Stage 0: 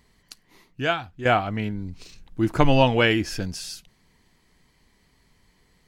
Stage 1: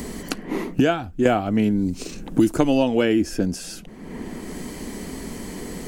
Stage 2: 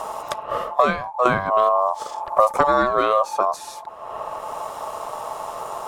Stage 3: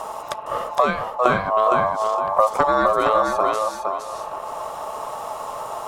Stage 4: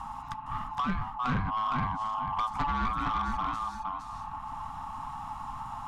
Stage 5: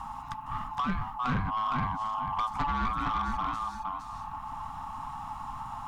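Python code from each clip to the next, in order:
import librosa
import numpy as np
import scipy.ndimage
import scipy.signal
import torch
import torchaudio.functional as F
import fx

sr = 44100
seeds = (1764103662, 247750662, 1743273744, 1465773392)

y1 = fx.graphic_eq_10(x, sr, hz=(125, 250, 1000, 2000, 4000, 8000), db=(-10, 5, -8, -8, -8, 4))
y1 = fx.band_squash(y1, sr, depth_pct=100)
y1 = y1 * librosa.db_to_amplitude(4.5)
y2 = fx.low_shelf(y1, sr, hz=290.0, db=9.5)
y2 = y2 * np.sin(2.0 * np.pi * 870.0 * np.arange(len(y2)) / sr)
y2 = y2 * librosa.db_to_amplitude(-1.0)
y3 = fx.echo_feedback(y2, sr, ms=463, feedback_pct=24, wet_db=-4)
y3 = y3 * librosa.db_to_amplitude(-1.0)
y4 = scipy.signal.sosfilt(scipy.signal.ellip(3, 1.0, 40, [270.0, 820.0], 'bandstop', fs=sr, output='sos'), y3)
y4 = fx.riaa(y4, sr, side='playback')
y4 = 10.0 ** (-17.5 / 20.0) * np.tanh(y4 / 10.0 ** (-17.5 / 20.0))
y4 = y4 * librosa.db_to_amplitude(-6.5)
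y5 = fx.quant_dither(y4, sr, seeds[0], bits=12, dither='none')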